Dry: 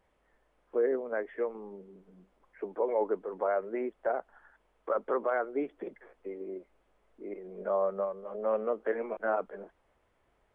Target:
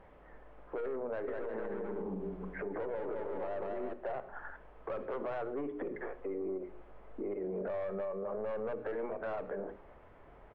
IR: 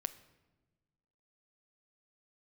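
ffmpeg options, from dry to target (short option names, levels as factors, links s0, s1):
-filter_complex "[0:a]aeval=exprs='(tanh(35.5*val(0)+0.2)-tanh(0.2))/35.5':c=same,bass=f=250:g=0,treble=f=4000:g=-13,bandreject=f=60:t=h:w=6,bandreject=f=120:t=h:w=6,bandreject=f=180:t=h:w=6,bandreject=f=240:t=h:w=6,bandreject=f=300:t=h:w=6,bandreject=f=360:t=h:w=6,bandreject=f=420:t=h:w=6,bandreject=f=480:t=h:w=6,asplit=3[s0][s1][s2];[s0]afade=t=out:st=1.27:d=0.02[s3];[s1]aecho=1:1:200|340|438|506.6|554.6:0.631|0.398|0.251|0.158|0.1,afade=t=in:st=1.27:d=0.02,afade=t=out:st=3.92:d=0.02[s4];[s2]afade=t=in:st=3.92:d=0.02[s5];[s3][s4][s5]amix=inputs=3:normalize=0,acompressor=threshold=0.00631:ratio=12,highshelf=f=2400:g=-11.5[s6];[1:a]atrim=start_sample=2205,afade=t=out:st=0.18:d=0.01,atrim=end_sample=8379[s7];[s6][s7]afir=irnorm=-1:irlink=0,alimiter=level_in=15.8:limit=0.0631:level=0:latency=1:release=71,volume=0.0631,volume=7.5"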